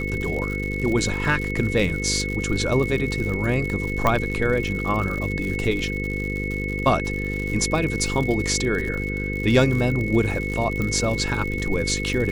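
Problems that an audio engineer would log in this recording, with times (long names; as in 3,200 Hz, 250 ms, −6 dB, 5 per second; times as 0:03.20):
mains buzz 50 Hz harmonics 10 −28 dBFS
surface crackle 110 per second −28 dBFS
whistle 2,200 Hz −29 dBFS
0:04.07: click −7 dBFS
0:10.82: click −14 dBFS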